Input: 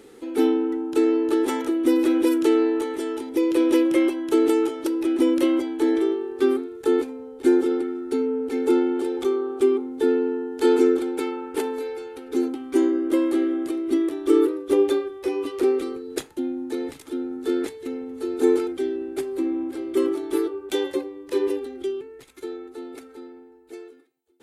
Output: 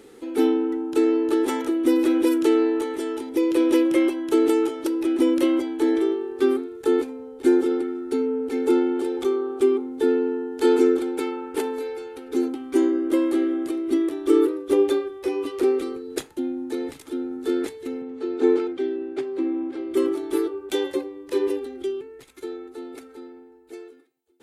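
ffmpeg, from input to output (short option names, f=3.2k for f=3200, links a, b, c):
-filter_complex "[0:a]asettb=1/sr,asplit=3[a][b][c];[a]atrim=end=18.024[d];[b]atrim=start=18.02:end=19.91,asetpts=PTS-STARTPTS,afade=t=in:d=0.004:c=qsin,afade=t=out:st=1.886:d=0.004:c=qsin,highpass=120,lowpass=4.1k[e];[c]atrim=start=19.906[f];[d][e]acrossfade=d=0.004:c1=hsin:c2=qsin[g];[g][f]acrossfade=d=0.004:c1=qsin:c2=hsin"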